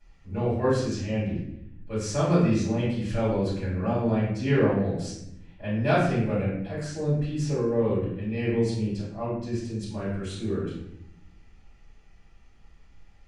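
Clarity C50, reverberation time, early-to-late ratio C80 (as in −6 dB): 1.0 dB, 0.80 s, 5.0 dB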